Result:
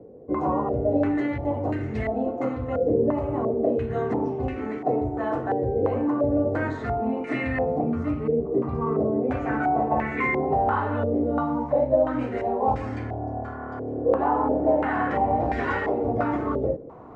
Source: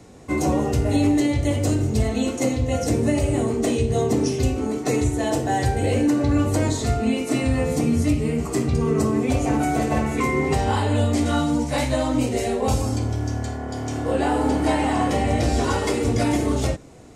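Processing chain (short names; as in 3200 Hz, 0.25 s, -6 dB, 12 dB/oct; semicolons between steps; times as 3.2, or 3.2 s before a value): low shelf 100 Hz -9 dB; reverse; upward compressor, threshold -33 dBFS; reverse; stepped low-pass 2.9 Hz 490–1900 Hz; gain -5 dB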